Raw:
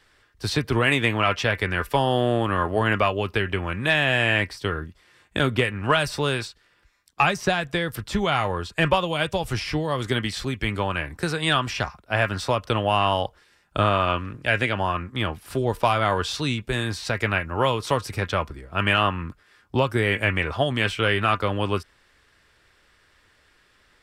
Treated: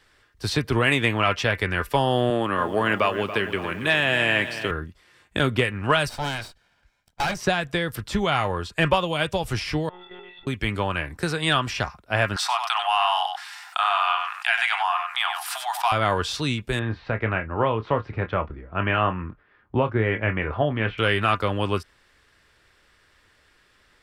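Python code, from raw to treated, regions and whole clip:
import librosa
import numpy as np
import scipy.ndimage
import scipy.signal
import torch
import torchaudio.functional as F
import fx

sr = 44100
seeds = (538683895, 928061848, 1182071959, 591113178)

y = fx.chain(x, sr, fx.highpass(hz=160.0, slope=12),
    fx.notch(hz=730.0, q=17.0),
    fx.echo_crushed(ms=281, feedback_pct=55, bits=8, wet_db=-12.0), at=(2.3, 4.71))
y = fx.chain(y, sr, fx.lower_of_two(delay_ms=1.3),
    fx.high_shelf(hz=4600.0, db=-7.5),
    fx.clip_hard(threshold_db=-19.5), at=(6.09, 7.37))
y = fx.chain(y, sr, fx.stiff_resonator(f0_hz=400.0, decay_s=0.52, stiffness=0.03),
    fx.lpc_monotone(seeds[0], pitch_hz=180.0, order=16),
    fx.env_flatten(amount_pct=50), at=(9.89, 10.47))
y = fx.chain(y, sr, fx.cheby1_highpass(hz=700.0, order=8),
    fx.echo_single(ms=95, db=-11.0),
    fx.env_flatten(amount_pct=50), at=(12.36, 15.92))
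y = fx.chain(y, sr, fx.bessel_lowpass(hz=1800.0, order=4),
    fx.doubler(ms=27.0, db=-11), at=(16.79, 20.98))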